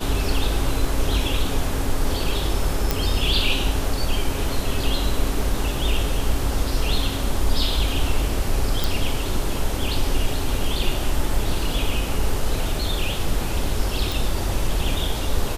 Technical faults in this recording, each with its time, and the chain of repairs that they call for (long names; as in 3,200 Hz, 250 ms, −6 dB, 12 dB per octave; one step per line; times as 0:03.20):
0:02.91: click
0:08.84: click
0:14.12: click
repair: click removal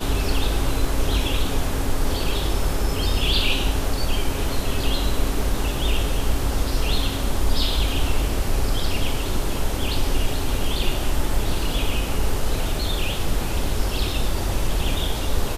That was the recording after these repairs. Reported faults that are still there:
none of them is left